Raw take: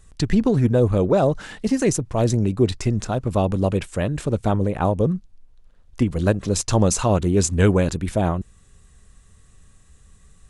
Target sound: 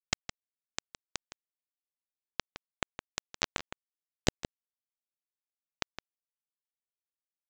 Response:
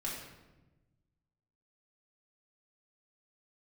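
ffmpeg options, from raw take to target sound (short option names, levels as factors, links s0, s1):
-filter_complex "[0:a]equalizer=f=400:w=2.9:g=-12,acompressor=threshold=0.0224:ratio=5,aresample=16000,acrusher=bits=3:mix=0:aa=0.000001,aresample=44100,atempo=1.4,asplit=2[s0][s1];[s1]adelay=163.3,volume=0.282,highshelf=f=4000:g=-3.67[s2];[s0][s2]amix=inputs=2:normalize=0,volume=2.51"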